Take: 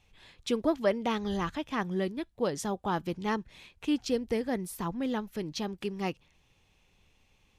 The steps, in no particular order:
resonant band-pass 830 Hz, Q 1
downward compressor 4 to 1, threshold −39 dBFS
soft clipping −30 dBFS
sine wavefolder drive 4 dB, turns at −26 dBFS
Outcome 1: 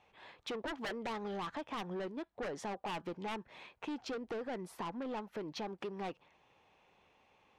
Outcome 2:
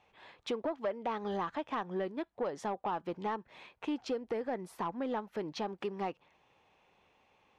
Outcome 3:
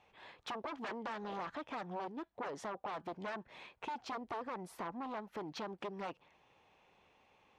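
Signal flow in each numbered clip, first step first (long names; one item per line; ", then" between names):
resonant band-pass, then sine wavefolder, then soft clipping, then downward compressor
resonant band-pass, then downward compressor, then soft clipping, then sine wavefolder
sine wavefolder, then resonant band-pass, then downward compressor, then soft clipping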